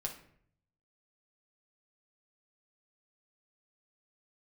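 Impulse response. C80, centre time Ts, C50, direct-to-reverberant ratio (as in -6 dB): 13.5 dB, 17 ms, 9.0 dB, 0.0 dB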